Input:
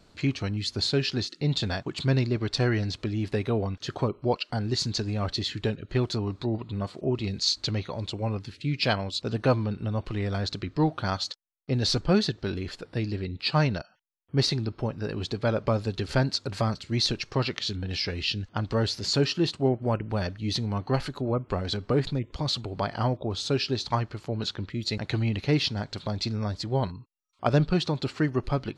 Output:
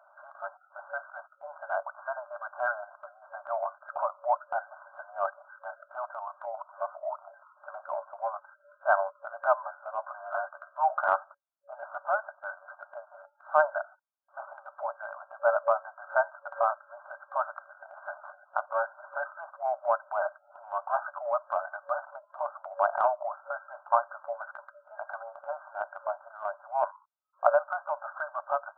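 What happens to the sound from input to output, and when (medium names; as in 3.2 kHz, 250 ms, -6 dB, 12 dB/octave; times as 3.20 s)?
9.60–11.16 s: doubling 14 ms -7 dB
17.96–18.40 s: overdrive pedal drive 14 dB, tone 1 kHz, clips at -14 dBFS
whole clip: FFT band-pass 560–1600 Hz; transient shaper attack -4 dB, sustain 0 dB; trim +7.5 dB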